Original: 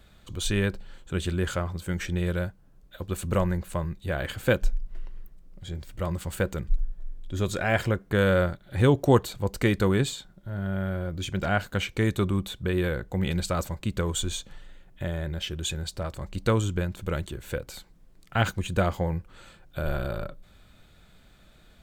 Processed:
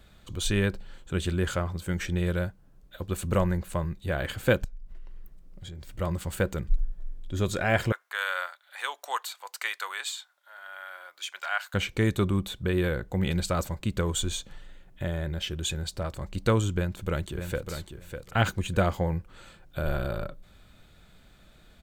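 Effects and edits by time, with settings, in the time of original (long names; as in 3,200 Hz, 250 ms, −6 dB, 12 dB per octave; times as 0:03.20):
0:04.64–0:05.94: downward compressor, threshold −37 dBFS
0:07.92–0:11.74: high-pass filter 920 Hz 24 dB per octave
0:16.71–0:17.70: delay throw 600 ms, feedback 15%, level −7.5 dB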